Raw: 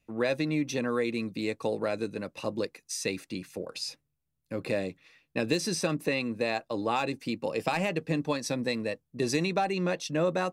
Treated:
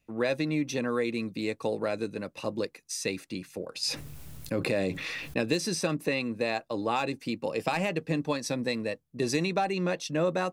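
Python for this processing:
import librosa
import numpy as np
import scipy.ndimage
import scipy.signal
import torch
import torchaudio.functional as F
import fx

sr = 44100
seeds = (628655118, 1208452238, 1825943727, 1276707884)

y = fx.env_flatten(x, sr, amount_pct=70, at=(3.83, 5.42))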